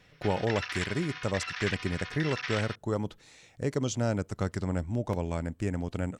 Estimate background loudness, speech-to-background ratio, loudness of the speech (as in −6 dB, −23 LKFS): −36.5 LKFS, 4.0 dB, −32.5 LKFS